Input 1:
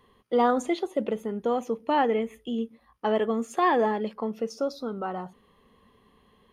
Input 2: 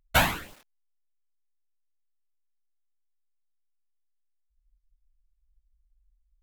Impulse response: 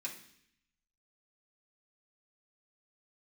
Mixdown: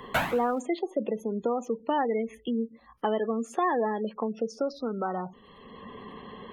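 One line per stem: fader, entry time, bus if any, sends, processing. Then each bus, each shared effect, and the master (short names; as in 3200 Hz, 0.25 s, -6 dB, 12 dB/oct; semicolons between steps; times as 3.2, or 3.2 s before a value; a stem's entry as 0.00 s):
-2.5 dB, 0.00 s, no send, spectral gate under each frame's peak -25 dB strong
-2.0 dB, 0.00 s, no send, auto duck -15 dB, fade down 1.80 s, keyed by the first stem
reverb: off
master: three-band squash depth 70%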